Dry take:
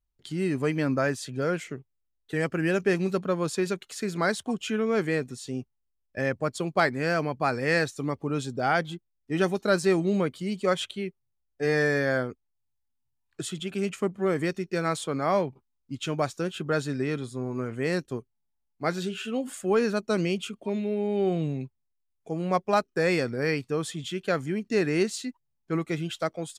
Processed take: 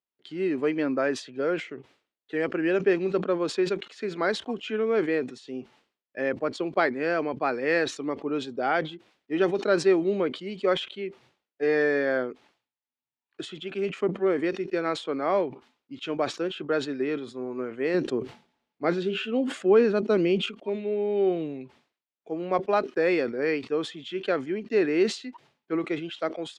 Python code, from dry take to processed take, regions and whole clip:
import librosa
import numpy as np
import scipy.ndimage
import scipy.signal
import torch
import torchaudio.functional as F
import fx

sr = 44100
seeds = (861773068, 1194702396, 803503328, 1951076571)

y = fx.chain(x, sr, fx.low_shelf(hz=300.0, db=8.5),
    fx.sustainer(db_per_s=52.0), at=(17.94, 20.46))
y = scipy.signal.sosfilt(scipy.signal.cheby1(2, 1.0, [310.0, 3200.0], 'bandpass', fs=sr, output='sos'), y)
y = fx.dynamic_eq(y, sr, hz=360.0, q=0.96, threshold_db=-34.0, ratio=4.0, max_db=4)
y = fx.sustainer(y, sr, db_per_s=150.0)
y = y * librosa.db_to_amplitude(-1.0)